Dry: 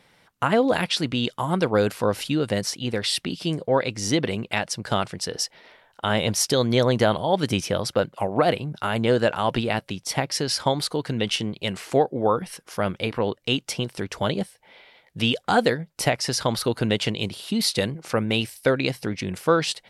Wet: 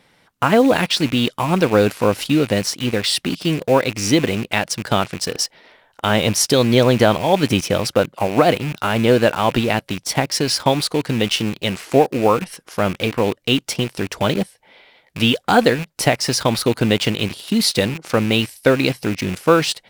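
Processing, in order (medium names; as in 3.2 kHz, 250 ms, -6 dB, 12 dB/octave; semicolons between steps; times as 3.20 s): rattle on loud lows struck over -36 dBFS, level -27 dBFS; peaking EQ 280 Hz +3 dB 0.6 oct; in parallel at -6.5 dB: bit crusher 5-bit; on the sum: trim +2 dB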